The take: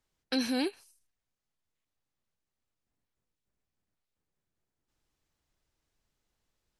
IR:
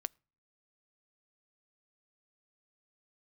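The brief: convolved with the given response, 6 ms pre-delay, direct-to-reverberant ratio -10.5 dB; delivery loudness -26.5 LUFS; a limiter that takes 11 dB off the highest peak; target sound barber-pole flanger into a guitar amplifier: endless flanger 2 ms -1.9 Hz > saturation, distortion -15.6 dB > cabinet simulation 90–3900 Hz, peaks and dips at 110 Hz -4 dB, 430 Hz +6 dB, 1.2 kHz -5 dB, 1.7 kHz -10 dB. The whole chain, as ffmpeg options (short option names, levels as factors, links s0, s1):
-filter_complex "[0:a]alimiter=level_in=1.78:limit=0.0631:level=0:latency=1,volume=0.562,asplit=2[s0][s1];[1:a]atrim=start_sample=2205,adelay=6[s2];[s1][s2]afir=irnorm=-1:irlink=0,volume=3.98[s3];[s0][s3]amix=inputs=2:normalize=0,asplit=2[s4][s5];[s5]adelay=2,afreqshift=-1.9[s6];[s4][s6]amix=inputs=2:normalize=1,asoftclip=threshold=0.0631,highpass=90,equalizer=f=110:t=q:w=4:g=-4,equalizer=f=430:t=q:w=4:g=6,equalizer=f=1200:t=q:w=4:g=-5,equalizer=f=1700:t=q:w=4:g=-10,lowpass=f=3900:w=0.5412,lowpass=f=3900:w=1.3066,volume=2.11"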